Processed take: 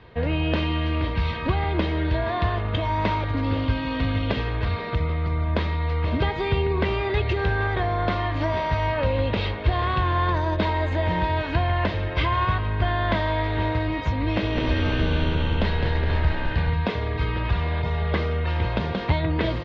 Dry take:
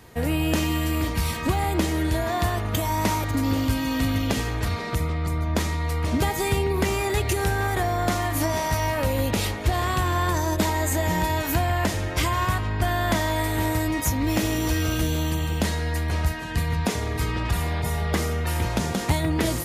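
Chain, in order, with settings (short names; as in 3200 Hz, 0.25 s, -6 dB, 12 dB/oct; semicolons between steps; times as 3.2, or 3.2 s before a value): steep low-pass 3900 Hz 36 dB/oct; comb 1.9 ms, depth 30%; 14.34–16.7 frequency-shifting echo 0.209 s, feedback 50%, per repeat -66 Hz, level -4 dB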